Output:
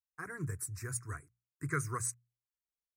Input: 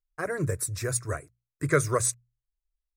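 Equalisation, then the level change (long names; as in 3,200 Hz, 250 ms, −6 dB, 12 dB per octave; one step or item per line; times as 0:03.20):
high-pass filter 68 Hz 24 dB per octave
phaser with its sweep stopped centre 1,400 Hz, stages 4
−8.0 dB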